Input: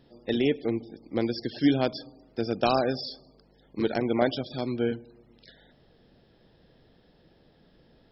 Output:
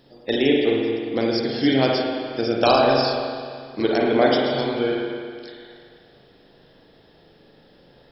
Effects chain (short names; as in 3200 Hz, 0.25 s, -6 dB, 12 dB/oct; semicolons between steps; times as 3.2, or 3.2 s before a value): tone controls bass -7 dB, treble +5 dB; spring tank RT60 2.1 s, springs 37/44 ms, chirp 20 ms, DRR -2 dB; gain +5.5 dB